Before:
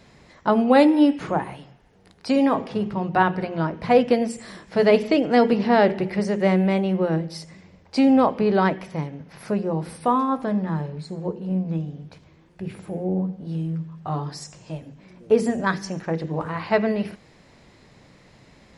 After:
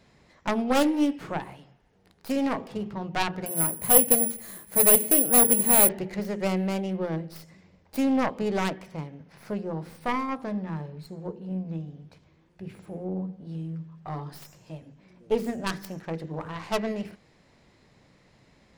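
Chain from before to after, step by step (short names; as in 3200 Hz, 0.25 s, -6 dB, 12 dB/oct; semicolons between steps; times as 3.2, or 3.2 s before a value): tracing distortion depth 0.48 ms; 3.46–5.89 careless resampling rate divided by 4×, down filtered, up zero stuff; gain -7.5 dB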